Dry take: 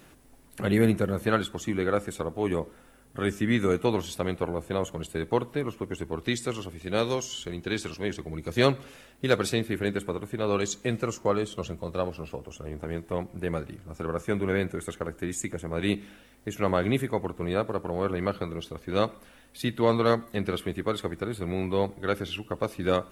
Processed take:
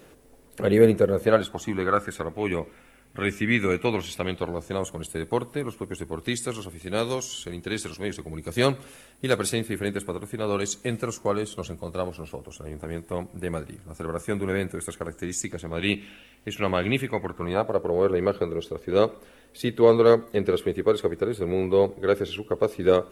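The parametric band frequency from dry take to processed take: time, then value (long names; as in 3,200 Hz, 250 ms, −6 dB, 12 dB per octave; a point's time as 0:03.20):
parametric band +11 dB 0.58 octaves
0:01.21 470 Hz
0:02.42 2,300 Hz
0:04.18 2,300 Hz
0:04.93 10,000 Hz
0:14.97 10,000 Hz
0:15.88 2,700 Hz
0:17.06 2,700 Hz
0:17.87 430 Hz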